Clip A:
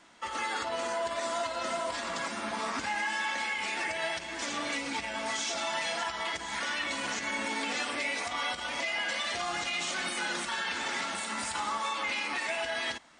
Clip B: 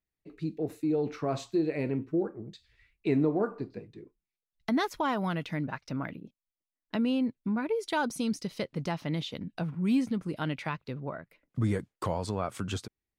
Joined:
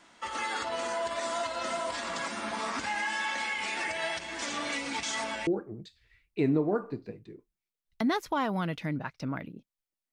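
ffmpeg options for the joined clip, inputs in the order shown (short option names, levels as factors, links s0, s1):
-filter_complex "[0:a]apad=whole_dur=10.12,atrim=end=10.12,asplit=2[s0][s1];[s0]atrim=end=5.032[s2];[s1]atrim=start=5.028:end=5.472,asetpts=PTS-STARTPTS,areverse[s3];[1:a]atrim=start=2.148:end=6.8[s4];[s2][s3]acrossfade=d=0.004:c1=hsin:c2=hsin[s5];[s5][s4]acrossfade=d=0.004:c1=hsin:c2=hsin"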